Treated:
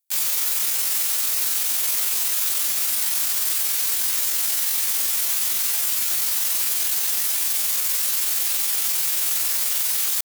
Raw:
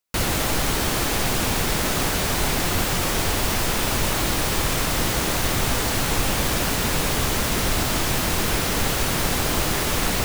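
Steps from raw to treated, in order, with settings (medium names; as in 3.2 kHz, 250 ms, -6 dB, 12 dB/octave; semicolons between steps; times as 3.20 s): differentiator; pitch shift +9 st; trim +8 dB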